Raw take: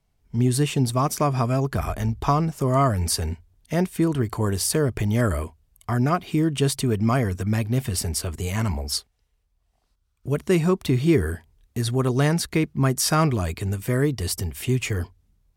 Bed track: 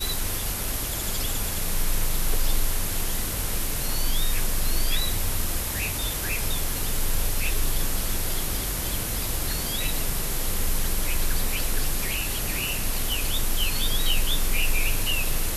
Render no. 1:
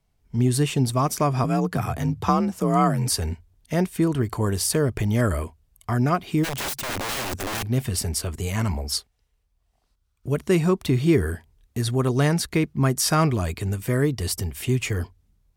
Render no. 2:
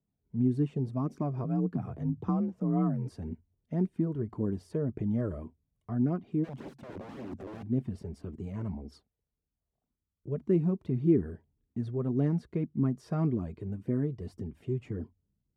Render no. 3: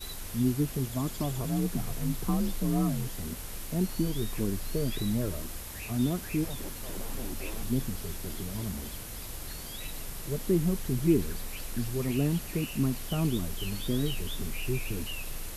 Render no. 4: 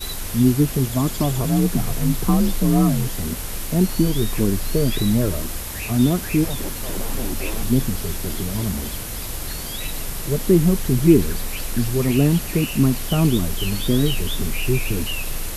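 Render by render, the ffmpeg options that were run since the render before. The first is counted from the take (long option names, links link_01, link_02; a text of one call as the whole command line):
ffmpeg -i in.wav -filter_complex "[0:a]asettb=1/sr,asplit=3[link_01][link_02][link_03];[link_01]atrim=end=1.444[link_04];[link_02]atrim=start=1.44:end=3.09,asetpts=PTS-STARTPTS,afade=type=in:duration=0.004:curve=qsin,afade=type=out:start_time=1.646:duration=0.004:curve=qsin,afreqshift=41[link_05];[link_03]atrim=start=3.086[link_06];[link_04][link_05]acrossfade=duration=0.004:curve1=hsin:curve2=qsin[link_07];[link_07][link_06]acrossfade=duration=0.004:curve1=qsin:curve2=hsin,asplit=3[link_08][link_09][link_10];[link_08]afade=type=out:start_time=6.43:duration=0.02[link_11];[link_09]aeval=exprs='(mod(15*val(0)+1,2)-1)/15':channel_layout=same,afade=type=in:start_time=6.43:duration=0.02,afade=type=out:start_time=7.62:duration=0.02[link_12];[link_10]afade=type=in:start_time=7.62:duration=0.02[link_13];[link_11][link_12][link_13]amix=inputs=3:normalize=0" out.wav
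ffmpeg -i in.wav -af "flanger=delay=0.3:depth=1.9:regen=-30:speed=1.8:shape=triangular,bandpass=frequency=250:width_type=q:width=1.5:csg=0" out.wav
ffmpeg -i in.wav -i bed.wav -filter_complex "[1:a]volume=-12.5dB[link_01];[0:a][link_01]amix=inputs=2:normalize=0" out.wav
ffmpeg -i in.wav -af "volume=11dB" out.wav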